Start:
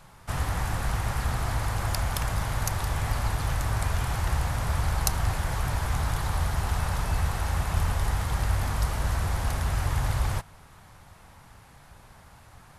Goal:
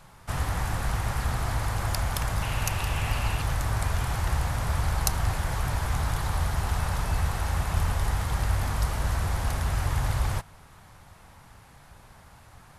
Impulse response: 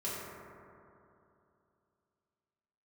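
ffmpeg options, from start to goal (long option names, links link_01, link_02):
-filter_complex "[0:a]asettb=1/sr,asplit=3[link_01][link_02][link_03];[link_01]atrim=end=2.424[link_04];[link_02]atrim=start=2.42:end=3.42,asetpts=PTS-STARTPTS,afade=type=in:duration=0.004:curve=qsin,afade=type=out:start_time=0.996:duration=0.004:curve=qsin,equalizer=frequency=2700:width_type=o:width=0.31:gain=13[link_05];[link_03]atrim=start=3.416[link_06];[link_04][link_05]acrossfade=duration=0.004:curve1=hsin:curve2=qsin[link_07];[link_07][link_06]acrossfade=duration=0.004:curve1=qsin:curve2=hsin"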